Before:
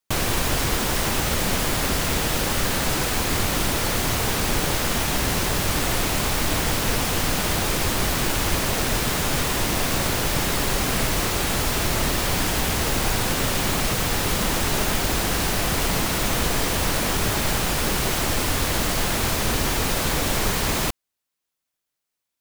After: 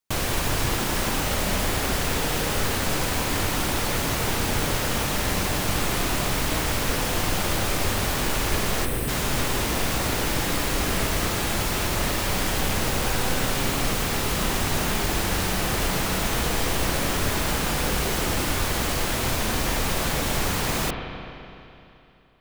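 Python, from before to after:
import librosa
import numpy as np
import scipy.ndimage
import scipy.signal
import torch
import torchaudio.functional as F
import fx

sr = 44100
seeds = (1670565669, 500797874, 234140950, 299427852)

y = fx.spec_box(x, sr, start_s=8.85, length_s=0.23, low_hz=580.0, high_hz=7800.0, gain_db=-11)
y = fx.rev_spring(y, sr, rt60_s=2.9, pass_ms=(32, 42), chirp_ms=60, drr_db=4.0)
y = y * librosa.db_to_amplitude(-3.0)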